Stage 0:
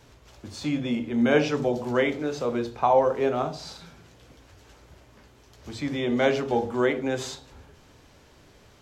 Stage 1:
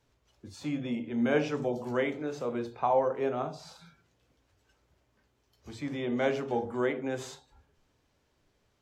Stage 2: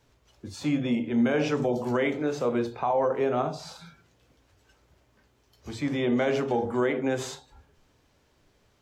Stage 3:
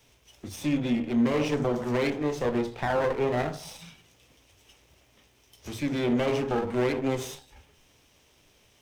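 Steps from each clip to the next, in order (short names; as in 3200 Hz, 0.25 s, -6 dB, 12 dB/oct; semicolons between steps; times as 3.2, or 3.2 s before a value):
spectral noise reduction 12 dB; dynamic EQ 4300 Hz, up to -5 dB, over -47 dBFS, Q 1.2; gain -6 dB
limiter -23.5 dBFS, peak gain reduction 9 dB; gain +7 dB
minimum comb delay 0.33 ms; mismatched tape noise reduction encoder only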